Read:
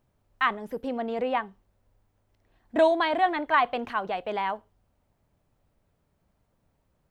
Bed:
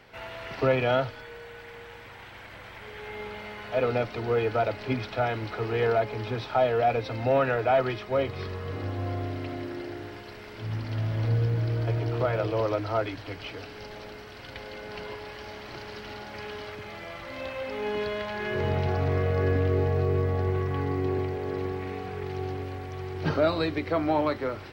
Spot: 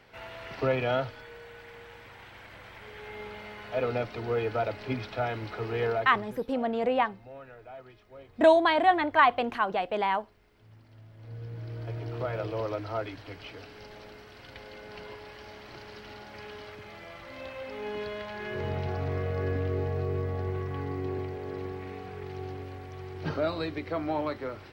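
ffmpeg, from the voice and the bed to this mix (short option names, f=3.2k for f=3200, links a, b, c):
-filter_complex "[0:a]adelay=5650,volume=1.5dB[a];[1:a]volume=14dB,afade=t=out:st=5.85:d=0.55:silence=0.105925,afade=t=in:st=11.17:d=1.2:silence=0.133352[b];[a][b]amix=inputs=2:normalize=0"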